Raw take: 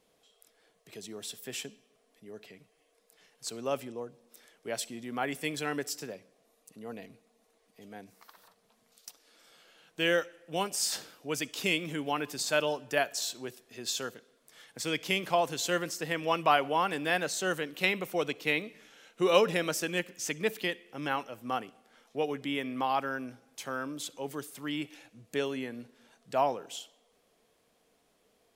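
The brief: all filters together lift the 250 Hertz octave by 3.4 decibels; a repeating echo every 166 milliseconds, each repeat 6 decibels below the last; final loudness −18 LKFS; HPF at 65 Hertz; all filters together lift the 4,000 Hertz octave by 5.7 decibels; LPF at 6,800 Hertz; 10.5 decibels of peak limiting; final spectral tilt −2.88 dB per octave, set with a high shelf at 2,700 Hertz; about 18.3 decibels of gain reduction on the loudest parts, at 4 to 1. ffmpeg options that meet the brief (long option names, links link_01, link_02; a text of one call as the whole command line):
ffmpeg -i in.wav -af "highpass=65,lowpass=6800,equalizer=frequency=250:width_type=o:gain=4.5,highshelf=frequency=2700:gain=5,equalizer=frequency=4000:width_type=o:gain=4,acompressor=threshold=-39dB:ratio=4,alimiter=level_in=7dB:limit=-24dB:level=0:latency=1,volume=-7dB,aecho=1:1:166|332|498|664|830|996:0.501|0.251|0.125|0.0626|0.0313|0.0157,volume=24dB" out.wav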